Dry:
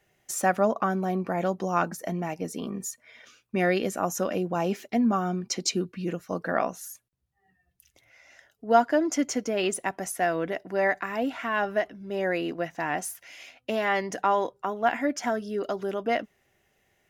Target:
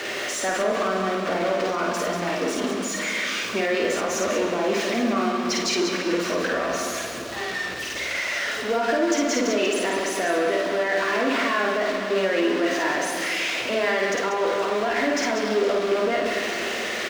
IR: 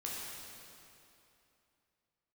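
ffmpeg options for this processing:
-filter_complex "[0:a]aeval=exprs='val(0)+0.5*0.0531*sgn(val(0))':channel_layout=same,acrossover=split=250 5800:gain=0.0794 1 0.178[link_01][link_02][link_03];[link_01][link_02][link_03]amix=inputs=3:normalize=0,aeval=exprs='0.531*(cos(1*acos(clip(val(0)/0.531,-1,1)))-cos(1*PI/2))+0.0168*(cos(8*acos(clip(val(0)/0.531,-1,1)))-cos(8*PI/2))':channel_layout=same,highpass=frequency=110:poles=1,asplit=2[link_04][link_05];[1:a]atrim=start_sample=2205,lowshelf=frequency=220:gain=9[link_06];[link_05][link_06]afir=irnorm=-1:irlink=0,volume=-4.5dB[link_07];[link_04][link_07]amix=inputs=2:normalize=0,alimiter=limit=-15dB:level=0:latency=1:release=47,equalizer=frequency=160:width_type=o:width=0.33:gain=-7,equalizer=frequency=800:width_type=o:width=0.33:gain=-8,equalizer=frequency=12500:width_type=o:width=0.33:gain=-6,aecho=1:1:52.48|189.5:0.794|0.447"

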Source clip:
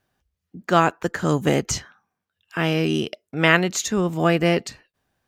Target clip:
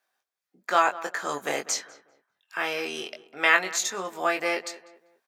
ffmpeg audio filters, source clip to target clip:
ffmpeg -i in.wav -filter_complex "[0:a]highpass=710,bandreject=frequency=2900:width=11,asplit=2[link_01][link_02];[link_02]adelay=21,volume=-5dB[link_03];[link_01][link_03]amix=inputs=2:normalize=0,asplit=2[link_04][link_05];[link_05]adelay=197,lowpass=frequency=1700:poles=1,volume=-16dB,asplit=2[link_06][link_07];[link_07]adelay=197,lowpass=frequency=1700:poles=1,volume=0.38,asplit=2[link_08][link_09];[link_09]adelay=197,lowpass=frequency=1700:poles=1,volume=0.38[link_10];[link_04][link_06][link_08][link_10]amix=inputs=4:normalize=0,volume=-2.5dB" out.wav

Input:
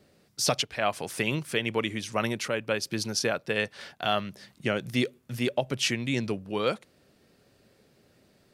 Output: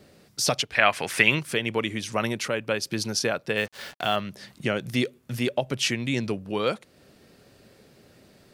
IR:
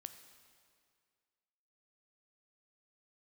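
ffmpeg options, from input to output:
-filter_complex "[0:a]asplit=2[link_01][link_02];[link_02]acompressor=threshold=-41dB:ratio=6,volume=2.5dB[link_03];[link_01][link_03]amix=inputs=2:normalize=0,asettb=1/sr,asplit=3[link_04][link_05][link_06];[link_04]atrim=end=0.754[link_07];[link_05]atrim=start=0.75:end=1.41,asetpts=PTS-STARTPTS,afade=type=in:duration=0.004:curve=qsin,afade=type=out:start_time=0.656:duration=0.004:curve=qsin,equalizer=frequency=2000:width_type=o:width=1.7:gain=11.5[link_08];[link_06]atrim=start=1.406[link_09];[link_07][link_08]acrossfade=duration=0.004:curve1=hsin:curve2=qsin[link_10];[link_10][link_09]acrossfade=duration=0.004:curve1=qsin:curve2=hsin,asettb=1/sr,asplit=3[link_11][link_12][link_13];[link_11]atrim=end=3.574[link_14];[link_12]atrim=start=3.57:end=4.16,asetpts=PTS-STARTPTS,afade=type=in:duration=0.004:curve=qsin,afade=type=out:start_time=0.586:duration=0.004:curve=qsin,acrusher=bits=6:mix=0:aa=0.5[link_15];[link_13]atrim=start=4.156[link_16];[link_14][link_15]acrossfade=duration=0.004:curve1=hsin:curve2=qsin[link_17];[link_17][link_16]acrossfade=duration=0.004:curve1=qsin:curve2=hsin"

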